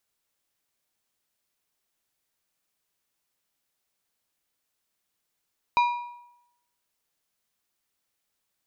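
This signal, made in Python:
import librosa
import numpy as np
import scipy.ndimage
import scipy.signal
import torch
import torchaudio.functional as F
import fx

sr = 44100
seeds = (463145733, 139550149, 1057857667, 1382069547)

y = fx.strike_metal(sr, length_s=1.55, level_db=-16.0, body='plate', hz=965.0, decay_s=0.83, tilt_db=9.0, modes=5)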